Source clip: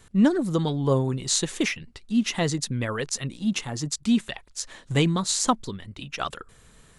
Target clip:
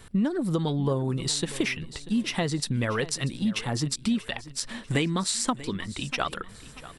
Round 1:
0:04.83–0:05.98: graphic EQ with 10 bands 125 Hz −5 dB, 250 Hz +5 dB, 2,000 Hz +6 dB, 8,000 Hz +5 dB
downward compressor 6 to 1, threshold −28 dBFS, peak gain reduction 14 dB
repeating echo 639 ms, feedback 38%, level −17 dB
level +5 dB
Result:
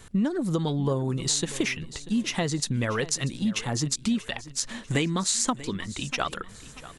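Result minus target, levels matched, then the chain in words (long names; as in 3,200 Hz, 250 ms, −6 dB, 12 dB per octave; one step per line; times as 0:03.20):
8,000 Hz band +3.5 dB
0:04.83–0:05.98: graphic EQ with 10 bands 125 Hz −5 dB, 250 Hz +5 dB, 2,000 Hz +6 dB, 8,000 Hz +5 dB
downward compressor 6 to 1, threshold −28 dBFS, peak gain reduction 14 dB
parametric band 6,600 Hz −11 dB 0.21 octaves
repeating echo 639 ms, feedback 38%, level −17 dB
level +5 dB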